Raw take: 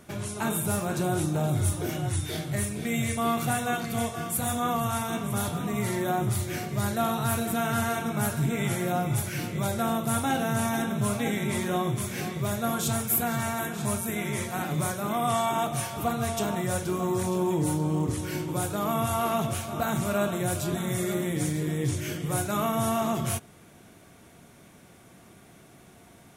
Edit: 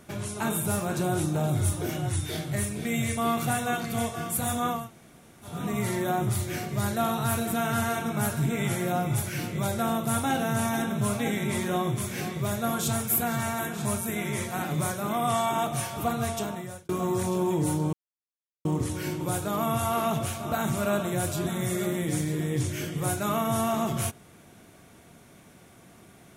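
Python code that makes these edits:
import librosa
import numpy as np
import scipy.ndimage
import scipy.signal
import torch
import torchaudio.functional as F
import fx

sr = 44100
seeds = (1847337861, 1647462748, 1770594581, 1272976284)

y = fx.edit(x, sr, fx.room_tone_fill(start_s=4.79, length_s=0.74, crossfade_s=0.24),
    fx.fade_out_span(start_s=16.24, length_s=0.65),
    fx.insert_silence(at_s=17.93, length_s=0.72), tone=tone)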